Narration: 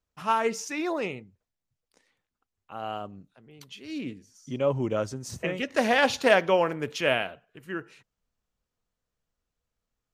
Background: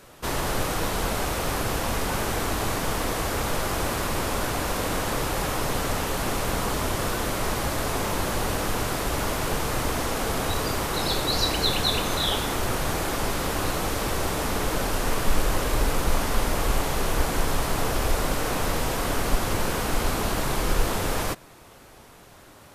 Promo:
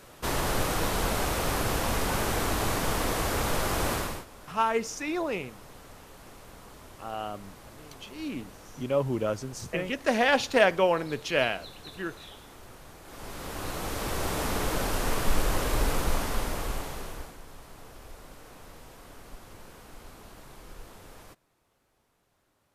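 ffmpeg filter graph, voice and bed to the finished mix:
-filter_complex "[0:a]adelay=4300,volume=-1dB[a];[1:a]volume=18dB,afade=t=out:st=3.93:d=0.32:silence=0.0891251,afade=t=in:st=13.03:d=1.37:silence=0.105925,afade=t=out:st=15.92:d=1.45:silence=0.1[b];[a][b]amix=inputs=2:normalize=0"

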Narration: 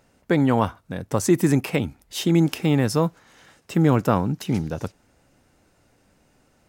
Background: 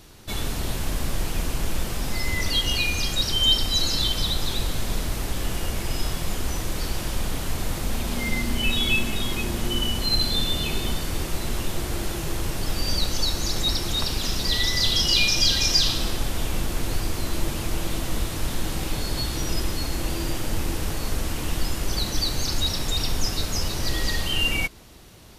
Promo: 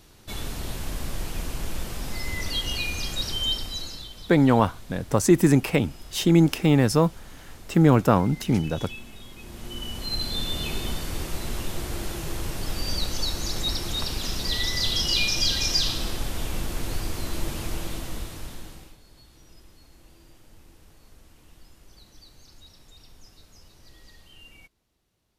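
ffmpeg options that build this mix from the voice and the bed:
-filter_complex "[0:a]adelay=4000,volume=1dB[a];[1:a]volume=9.5dB,afade=t=out:st=3.28:d=0.8:silence=0.223872,afade=t=in:st=9.36:d=1.3:silence=0.188365,afade=t=out:st=17.66:d=1.31:silence=0.0707946[b];[a][b]amix=inputs=2:normalize=0"

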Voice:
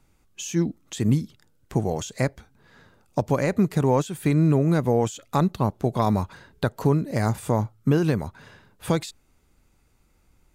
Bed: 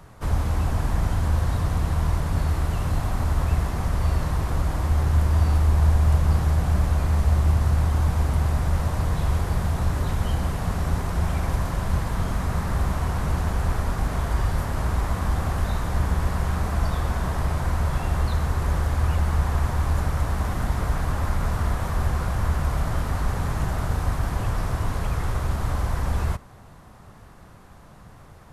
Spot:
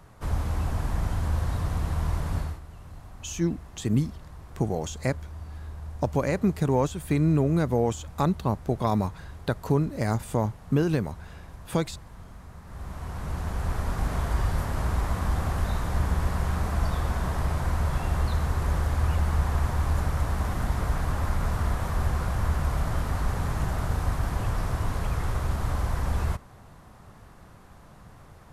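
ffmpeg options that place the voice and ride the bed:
-filter_complex "[0:a]adelay=2850,volume=-3dB[a];[1:a]volume=13dB,afade=t=out:st=2.35:d=0.25:silence=0.16788,afade=t=in:st=12.64:d=1.44:silence=0.133352[b];[a][b]amix=inputs=2:normalize=0"

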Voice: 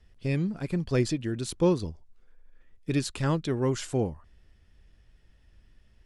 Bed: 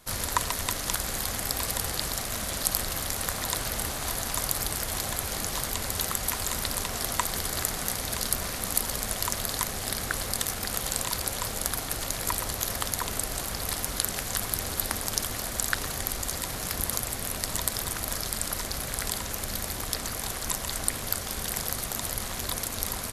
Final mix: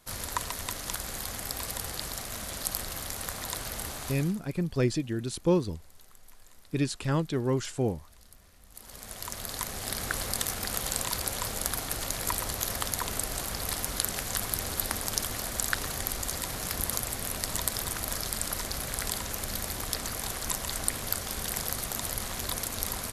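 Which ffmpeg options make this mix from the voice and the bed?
-filter_complex "[0:a]adelay=3850,volume=-1dB[a];[1:a]volume=21.5dB,afade=t=out:st=3.99:d=0.41:silence=0.0707946,afade=t=in:st=8.7:d=1.42:silence=0.0446684[b];[a][b]amix=inputs=2:normalize=0"

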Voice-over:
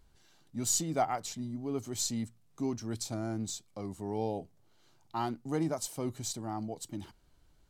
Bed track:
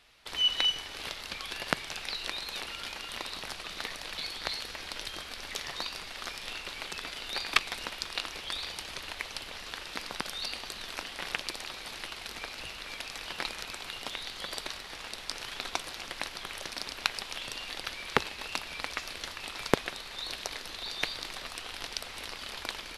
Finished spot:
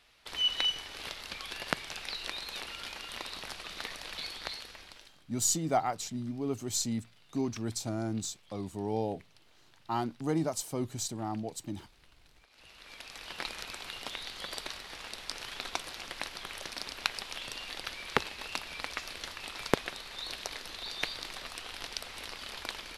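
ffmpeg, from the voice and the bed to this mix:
-filter_complex "[0:a]adelay=4750,volume=1.5dB[a];[1:a]volume=20dB,afade=t=out:st=4.27:d=0.88:silence=0.0794328,afade=t=in:st=12.48:d=1.08:silence=0.0749894[b];[a][b]amix=inputs=2:normalize=0"

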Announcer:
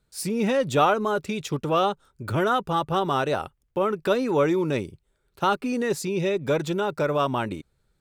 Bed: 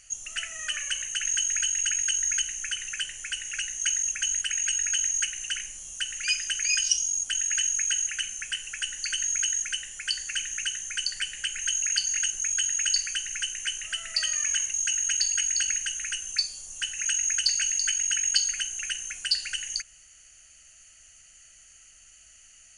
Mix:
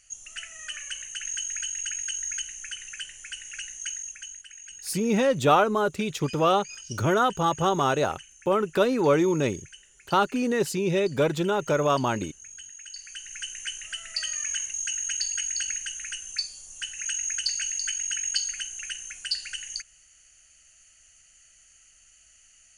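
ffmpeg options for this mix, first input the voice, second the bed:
-filter_complex "[0:a]adelay=4700,volume=0.5dB[a];[1:a]volume=8.5dB,afade=t=out:st=3.69:d=0.73:silence=0.251189,afade=t=in:st=12.93:d=0.64:silence=0.199526[b];[a][b]amix=inputs=2:normalize=0"

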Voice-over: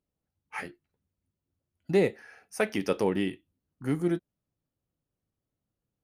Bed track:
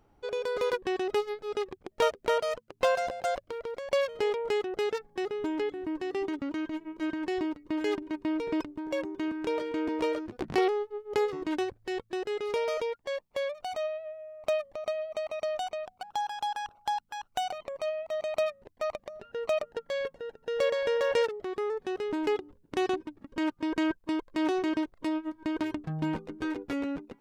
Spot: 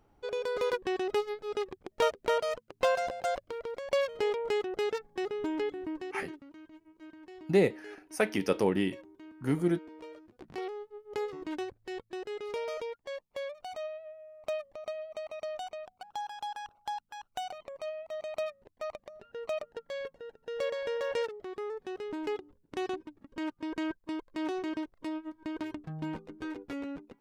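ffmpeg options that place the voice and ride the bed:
-filter_complex "[0:a]adelay=5600,volume=-0.5dB[a];[1:a]volume=10.5dB,afade=t=out:st=5.74:d=0.7:silence=0.149624,afade=t=in:st=10.29:d=1.11:silence=0.251189[b];[a][b]amix=inputs=2:normalize=0"

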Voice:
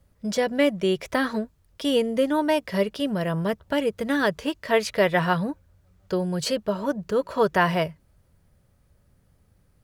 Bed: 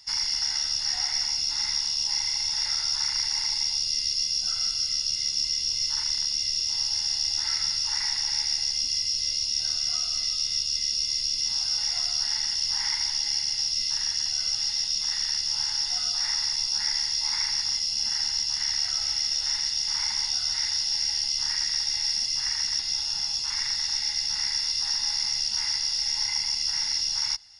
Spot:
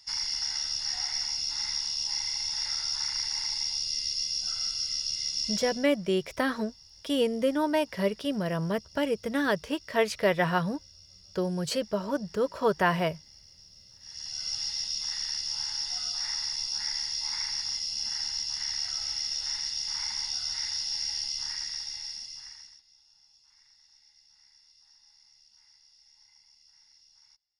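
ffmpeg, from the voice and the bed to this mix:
-filter_complex "[0:a]adelay=5250,volume=-4dB[a];[1:a]volume=17.5dB,afade=t=out:st=5.52:d=0.35:silence=0.0707946,afade=t=in:st=14:d=0.54:silence=0.0794328,afade=t=out:st=21.2:d=1.62:silence=0.0398107[b];[a][b]amix=inputs=2:normalize=0"

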